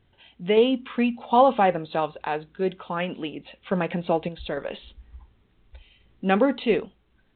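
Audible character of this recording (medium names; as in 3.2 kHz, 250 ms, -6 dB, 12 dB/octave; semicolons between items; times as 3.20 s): random-step tremolo; A-law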